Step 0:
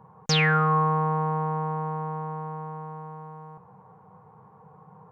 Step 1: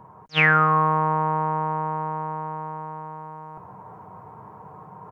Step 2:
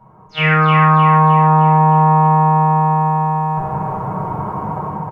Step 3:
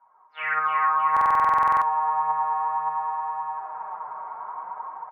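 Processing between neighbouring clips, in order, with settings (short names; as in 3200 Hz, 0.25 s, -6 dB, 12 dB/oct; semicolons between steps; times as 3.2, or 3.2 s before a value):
comb 3.1 ms, depth 54%; reverse; upward compressor, threshold -41 dBFS; reverse; attack slew limiter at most 490 dB/s; gain +5.5 dB
AGC gain up to 16 dB; feedback echo 0.309 s, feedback 47%, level -5 dB; reverb RT60 0.65 s, pre-delay 10 ms, DRR -4.5 dB; gain -6.5 dB
flange 0.58 Hz, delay 0.6 ms, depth 8.7 ms, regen +47%; Butterworth band-pass 1300 Hz, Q 1.1; stuck buffer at 1.12, samples 2048, times 14; gain -4.5 dB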